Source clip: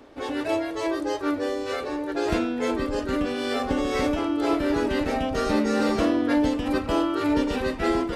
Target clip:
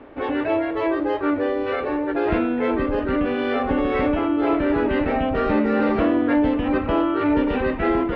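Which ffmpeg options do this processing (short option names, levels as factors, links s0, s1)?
-filter_complex "[0:a]lowpass=f=2700:w=0.5412,lowpass=f=2700:w=1.3066,asplit=2[s0][s1];[s1]alimiter=limit=0.0794:level=0:latency=1,volume=1[s2];[s0][s2]amix=inputs=2:normalize=0"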